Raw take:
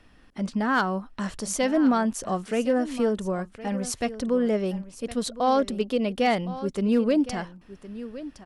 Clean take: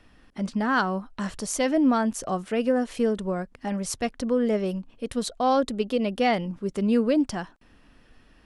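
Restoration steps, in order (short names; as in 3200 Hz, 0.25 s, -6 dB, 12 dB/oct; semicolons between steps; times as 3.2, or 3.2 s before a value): clip repair -14 dBFS; inverse comb 1.064 s -15 dB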